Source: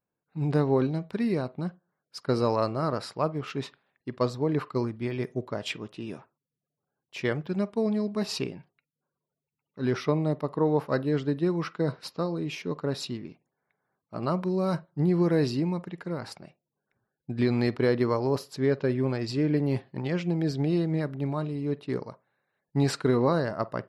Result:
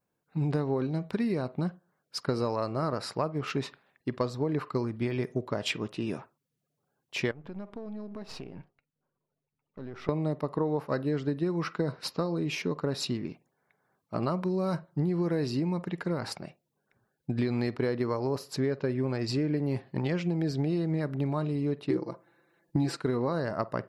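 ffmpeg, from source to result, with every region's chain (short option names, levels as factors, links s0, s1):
-filter_complex "[0:a]asettb=1/sr,asplit=3[s0][s1][s2];[s0]atrim=end=7.314[s3];[s1]atrim=start=7.31:end=10.09,asetpts=PTS-STARTPTS,afade=t=in:d=0.004:c=qsin,afade=t=out:st=2.776:d=0.004:c=qsin,aeval=exprs='if(lt(val(0),0),0.447*val(0),val(0))':c=same,lowpass=f=1700:p=1,acompressor=threshold=0.00708:ratio=6:attack=3.2:release=140:knee=1:detection=peak[s4];[s2]atrim=start=10.086[s5];[s3][s4]acrossfade=d=0.004:c1=hsin:c2=qsin[s6];[s6][s5]acrossfade=d=0.004:c1=qsin:c2=hsin,asettb=1/sr,asplit=3[s7][s8][s9];[s7]atrim=end=21.904[s10];[s8]atrim=start=21.9:end=22.97,asetpts=PTS-STARTPTS,afade=t=in:d=0.004:c=qsin,afade=t=out:st=1.066:d=0.004:c=qsin,equalizer=f=320:t=o:w=0.58:g=13,aecho=1:1:5.9:0.97,atrim=end_sample=47187[s11];[s9]atrim=start=22.966[s12];[s10][s11]acrossfade=d=0.004:c1=hsin:c2=qsin[s13];[s13][s12]acrossfade=d=0.004:c1=qsin:c2=hsin,adynamicequalizer=threshold=0.00112:dfrequency=3300:dqfactor=4.2:tfrequency=3300:tqfactor=4.2:attack=5:release=100:ratio=0.375:range=2.5:mode=cutabove:tftype=bell,acompressor=threshold=0.0251:ratio=5,volume=1.88"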